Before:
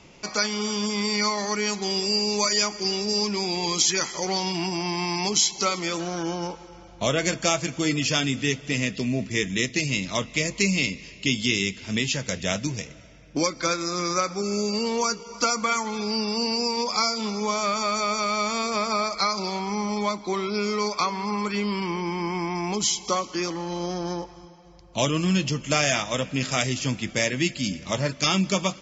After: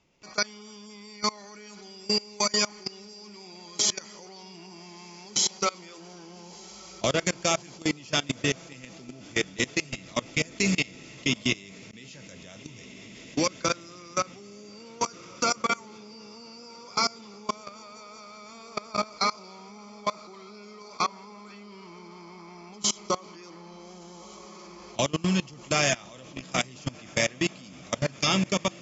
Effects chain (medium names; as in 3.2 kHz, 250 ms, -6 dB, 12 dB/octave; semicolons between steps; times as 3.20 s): echo that smears into a reverb 1315 ms, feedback 65%, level -9.5 dB; 11.73–12.17 s: slow attack 225 ms; level held to a coarse grid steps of 23 dB